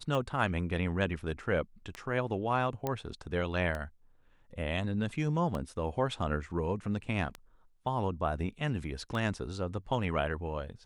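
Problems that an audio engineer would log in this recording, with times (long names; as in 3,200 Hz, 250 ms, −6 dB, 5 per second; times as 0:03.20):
scratch tick 33 1/3 rpm −23 dBFS
0:02.87: click −18 dBFS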